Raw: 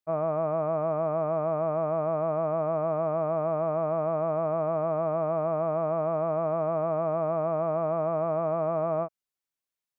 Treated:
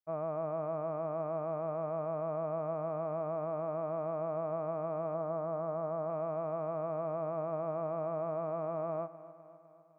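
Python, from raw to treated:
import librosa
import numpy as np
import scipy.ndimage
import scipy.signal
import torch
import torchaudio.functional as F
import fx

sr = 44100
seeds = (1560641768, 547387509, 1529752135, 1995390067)

y = fx.lowpass(x, sr, hz=2000.0, slope=24, at=(5.14, 6.1))
y = fx.echo_feedback(y, sr, ms=253, feedback_pct=59, wet_db=-16.0)
y = y * 10.0 ** (-8.5 / 20.0)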